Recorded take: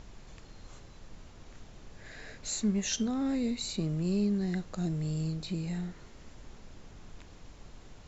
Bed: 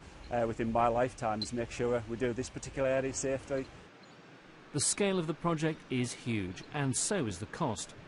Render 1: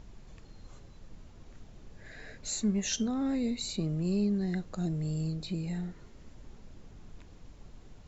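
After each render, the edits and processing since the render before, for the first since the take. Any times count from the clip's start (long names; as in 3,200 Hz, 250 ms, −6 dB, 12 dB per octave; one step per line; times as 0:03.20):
broadband denoise 6 dB, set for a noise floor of −52 dBFS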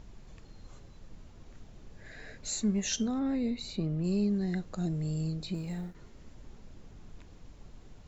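0:03.19–0:04.04: high-frequency loss of the air 130 metres
0:05.54–0:05.95: mu-law and A-law mismatch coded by A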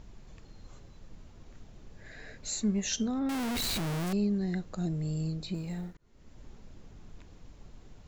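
0:03.29–0:04.13: sign of each sample alone
0:05.97–0:06.42: fade in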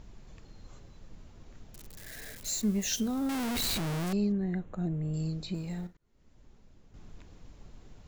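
0:01.74–0:03.75: spike at every zero crossing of −35.5 dBFS
0:04.32–0:05.14: moving average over 9 samples
0:05.87–0:06.94: clip gain −8 dB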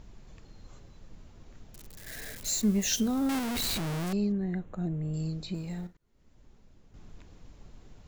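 0:02.07–0:03.39: clip gain +3 dB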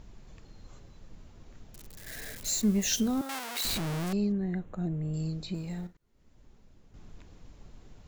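0:03.21–0:03.65: high-pass filter 660 Hz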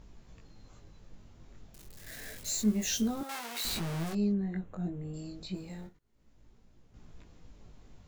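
chorus effect 0.29 Hz, delay 17 ms, depth 5 ms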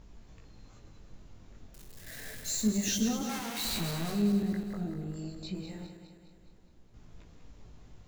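feedback delay that plays each chunk backwards 103 ms, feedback 73%, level −8 dB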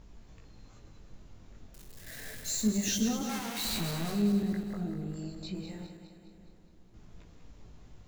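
feedback echo with a low-pass in the loop 686 ms, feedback 43%, level −21 dB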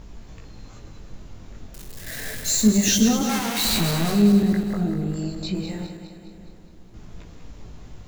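level +11.5 dB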